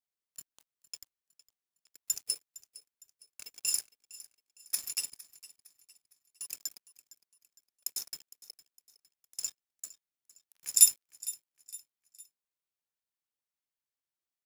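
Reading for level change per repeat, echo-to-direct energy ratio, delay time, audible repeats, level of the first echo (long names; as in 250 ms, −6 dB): −7.5 dB, −17.5 dB, 459 ms, 3, −18.5 dB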